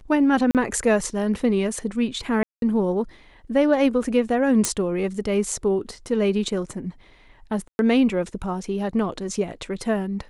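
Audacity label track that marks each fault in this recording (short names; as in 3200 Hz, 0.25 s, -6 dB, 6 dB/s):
0.510000	0.550000	gap 38 ms
2.430000	2.620000	gap 0.192 s
4.650000	4.650000	pop -5 dBFS
7.680000	7.790000	gap 0.111 s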